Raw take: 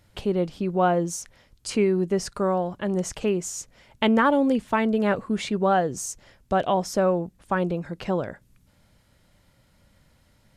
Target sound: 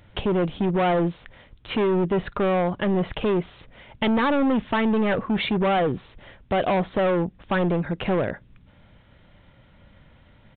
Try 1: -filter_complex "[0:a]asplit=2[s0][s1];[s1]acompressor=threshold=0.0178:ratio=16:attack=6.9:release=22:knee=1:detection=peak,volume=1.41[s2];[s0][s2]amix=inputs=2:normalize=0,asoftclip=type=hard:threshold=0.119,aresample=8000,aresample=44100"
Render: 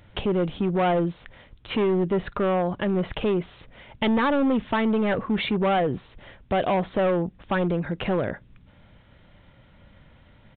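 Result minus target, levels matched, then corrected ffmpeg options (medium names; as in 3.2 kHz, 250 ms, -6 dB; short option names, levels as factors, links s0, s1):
compression: peak gain reduction +9 dB
-filter_complex "[0:a]asplit=2[s0][s1];[s1]acompressor=threshold=0.0531:ratio=16:attack=6.9:release=22:knee=1:detection=peak,volume=1.41[s2];[s0][s2]amix=inputs=2:normalize=0,asoftclip=type=hard:threshold=0.119,aresample=8000,aresample=44100"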